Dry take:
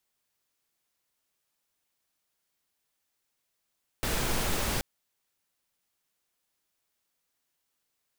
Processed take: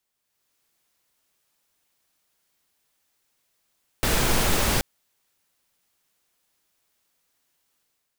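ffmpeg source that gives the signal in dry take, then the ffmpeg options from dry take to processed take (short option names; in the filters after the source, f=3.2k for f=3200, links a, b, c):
-f lavfi -i "anoisesrc=c=pink:a=0.182:d=0.78:r=44100:seed=1"
-af "dynaudnorm=f=110:g=7:m=7.5dB"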